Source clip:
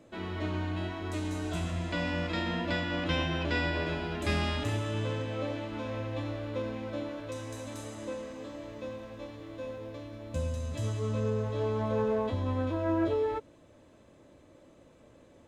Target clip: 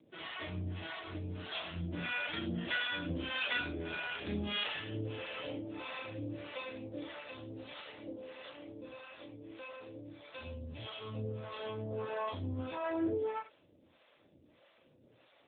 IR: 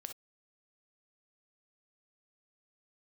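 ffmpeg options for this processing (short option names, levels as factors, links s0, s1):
-filter_complex "[0:a]acrossover=split=520[s0][s1];[s0]aeval=exprs='val(0)*(1-1/2+1/2*cos(2*PI*1.6*n/s))':c=same[s2];[s1]aeval=exprs='val(0)*(1-1/2-1/2*cos(2*PI*1.6*n/s))':c=same[s3];[s2][s3]amix=inputs=2:normalize=0,crystalizer=i=9:c=0,asplit=2[s4][s5];[1:a]atrim=start_sample=2205,adelay=34[s6];[s5][s6]afir=irnorm=-1:irlink=0,volume=1.12[s7];[s4][s7]amix=inputs=2:normalize=0,volume=0.531" -ar 8000 -c:a libopencore_amrnb -b:a 7950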